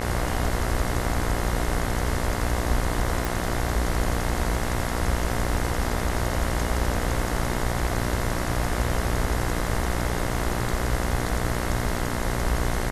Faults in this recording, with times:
mains buzz 60 Hz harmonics 36 −29 dBFS
0:03.25: click

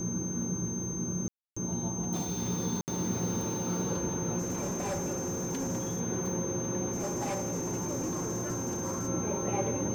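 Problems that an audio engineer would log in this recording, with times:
whistle 6,300 Hz −37 dBFS
0:01.28–0:01.56: drop-out 285 ms
0:02.81–0:02.88: drop-out 69 ms
0:04.38–0:06.01: clipping −29.5 dBFS
0:06.91–0:09.09: clipping −29.5 dBFS

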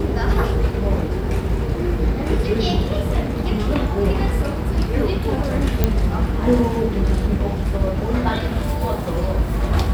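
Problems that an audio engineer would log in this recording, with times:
0:05.84: click −3 dBFS

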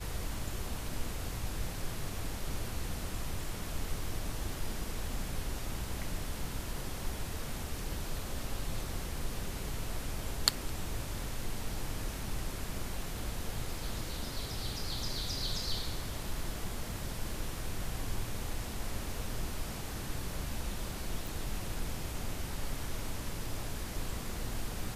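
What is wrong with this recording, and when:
0:21.27: click

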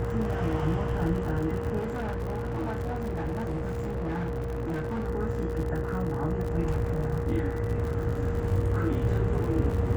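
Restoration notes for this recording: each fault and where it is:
mains buzz 60 Hz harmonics 34 −34 dBFS
surface crackle 82 per second −34 dBFS
whistle 470 Hz −33 dBFS
0:01.79–0:05.09: clipping −27.5 dBFS

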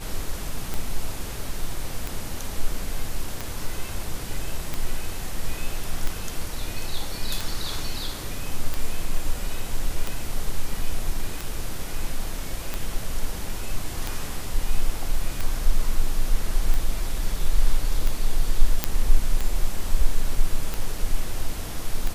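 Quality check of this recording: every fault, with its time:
scratch tick 45 rpm
0:18.84: click −3 dBFS
0:20.98: drop-out 2.2 ms

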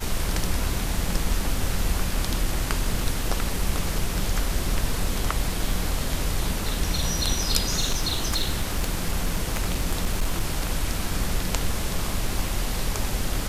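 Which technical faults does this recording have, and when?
0:07.80–0:10.64: clipping −17.5 dBFS

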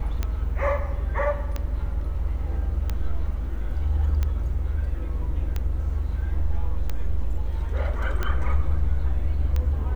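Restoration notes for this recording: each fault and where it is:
scratch tick 45 rpm −14 dBFS

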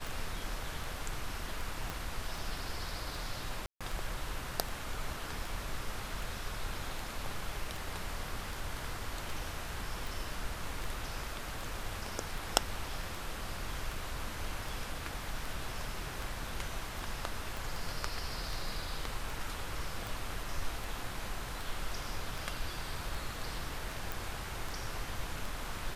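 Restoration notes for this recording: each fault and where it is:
scratch tick 78 rpm
0:01.90: click
0:03.66–0:03.81: drop-out 146 ms
0:17.57: click
0:24.12: click

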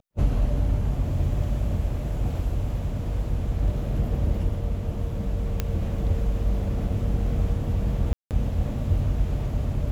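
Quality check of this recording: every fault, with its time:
0:05.60: click −11 dBFS
0:08.13–0:08.31: drop-out 178 ms

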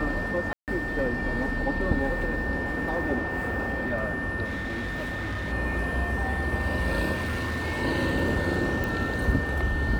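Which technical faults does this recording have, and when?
whistle 1,800 Hz −31 dBFS
0:00.53–0:00.68: drop-out 148 ms
0:04.44–0:05.53: clipping −28 dBFS
0:07.14–0:07.82: clipping −25.5 dBFS
0:08.84: click

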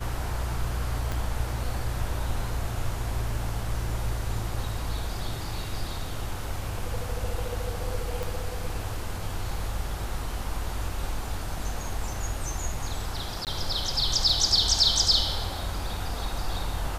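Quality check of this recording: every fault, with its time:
0:01.12: click
0:08.23: click
0:13.45–0:13.47: drop-out 18 ms

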